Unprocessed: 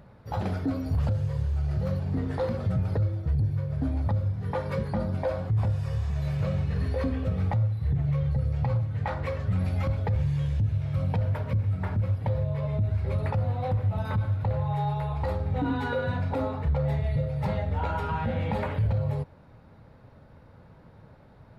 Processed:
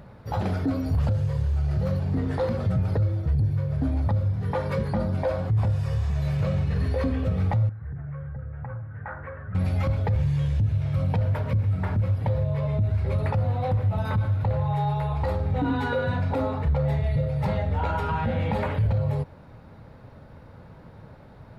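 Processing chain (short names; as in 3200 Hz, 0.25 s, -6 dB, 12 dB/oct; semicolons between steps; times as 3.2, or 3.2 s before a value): in parallel at -1 dB: limiter -28.5 dBFS, peak gain reduction 10 dB; 7.69–9.55 on the sum: ladder low-pass 1700 Hz, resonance 70%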